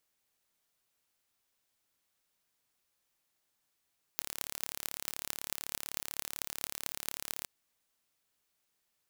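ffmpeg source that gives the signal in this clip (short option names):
-f lavfi -i "aevalsrc='0.531*eq(mod(n,1228),0)*(0.5+0.5*eq(mod(n,9824),0))':d=3.26:s=44100"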